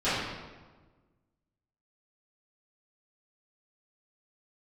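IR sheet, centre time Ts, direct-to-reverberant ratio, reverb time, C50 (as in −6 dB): 92 ms, −17.0 dB, 1.3 s, −1.5 dB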